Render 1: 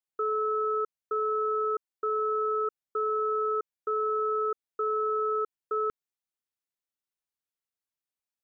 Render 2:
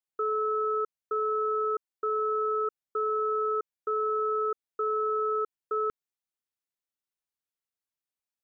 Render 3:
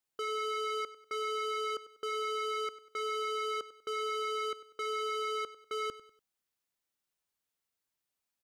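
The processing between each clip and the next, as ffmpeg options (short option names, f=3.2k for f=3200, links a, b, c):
-af anull
-af "asoftclip=type=tanh:threshold=-39dB,aecho=1:1:97|194|291:0.15|0.0569|0.0216,volume=5dB"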